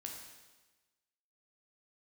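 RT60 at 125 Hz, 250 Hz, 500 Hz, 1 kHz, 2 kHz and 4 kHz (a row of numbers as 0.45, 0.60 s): 1.2, 1.2, 1.2, 1.2, 1.2, 1.2 s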